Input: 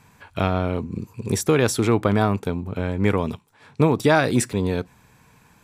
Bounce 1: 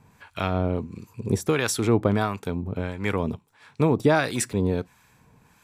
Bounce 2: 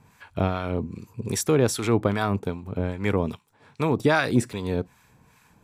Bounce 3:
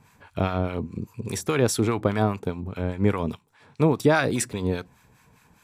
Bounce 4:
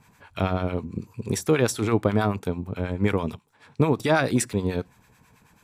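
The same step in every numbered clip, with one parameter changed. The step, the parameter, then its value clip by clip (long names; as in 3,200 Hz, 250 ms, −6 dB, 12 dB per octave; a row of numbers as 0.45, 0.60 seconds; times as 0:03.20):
two-band tremolo in antiphase, speed: 1.5, 2.5, 4.9, 9.2 Hertz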